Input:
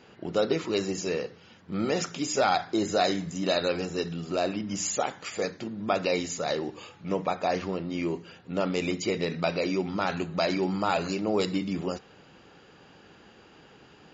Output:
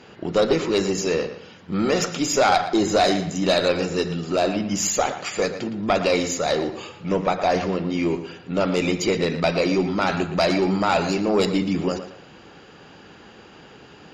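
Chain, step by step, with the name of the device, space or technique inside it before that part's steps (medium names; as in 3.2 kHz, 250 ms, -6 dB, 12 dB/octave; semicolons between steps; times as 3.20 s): rockabilly slapback (valve stage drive 17 dB, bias 0.35; tape echo 115 ms, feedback 32%, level -10 dB, low-pass 4.2 kHz); trim +8.5 dB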